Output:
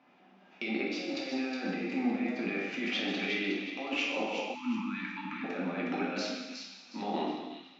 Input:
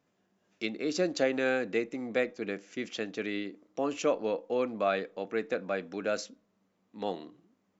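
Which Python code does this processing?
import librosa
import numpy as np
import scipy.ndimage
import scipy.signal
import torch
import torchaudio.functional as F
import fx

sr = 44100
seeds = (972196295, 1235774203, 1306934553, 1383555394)

p1 = fx.over_compress(x, sr, threshold_db=-40.0, ratio=-1.0)
p2 = fx.cabinet(p1, sr, low_hz=230.0, low_slope=12, high_hz=4300.0, hz=(260.0, 490.0, 790.0, 1200.0, 2400.0), db=(5, -6, 9, 4, 8))
p3 = p2 + fx.echo_wet_highpass(p2, sr, ms=364, feedback_pct=32, hz=2600.0, wet_db=-4.5, dry=0)
p4 = fx.rev_gated(p3, sr, seeds[0], gate_ms=400, shape='falling', drr_db=-3.5)
y = fx.spec_erase(p4, sr, start_s=4.55, length_s=0.89, low_hz=340.0, high_hz=830.0)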